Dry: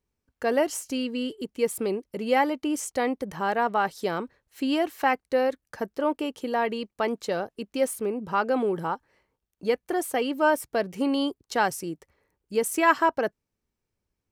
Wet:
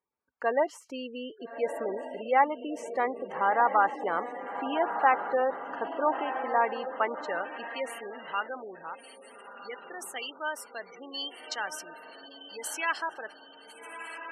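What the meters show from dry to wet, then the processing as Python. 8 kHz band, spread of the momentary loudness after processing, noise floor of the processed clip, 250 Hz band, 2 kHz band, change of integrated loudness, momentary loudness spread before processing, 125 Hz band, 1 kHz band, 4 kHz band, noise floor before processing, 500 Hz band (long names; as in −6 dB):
−8.0 dB, 18 LU, −53 dBFS, −12.0 dB, −2.5 dB, −3.5 dB, 9 LU, below −15 dB, −0.5 dB, −4.0 dB, −84 dBFS, −5.5 dB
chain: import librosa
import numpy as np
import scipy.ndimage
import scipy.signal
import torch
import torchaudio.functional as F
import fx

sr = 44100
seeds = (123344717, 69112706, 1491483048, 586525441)

y = fx.echo_diffused(x, sr, ms=1298, feedback_pct=50, wet_db=-7.5)
y = fx.spec_gate(y, sr, threshold_db=-25, keep='strong')
y = fx.filter_sweep_bandpass(y, sr, from_hz=1100.0, to_hz=4300.0, start_s=6.84, end_s=8.99, q=1.3)
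y = y * librosa.db_to_amplitude(3.5)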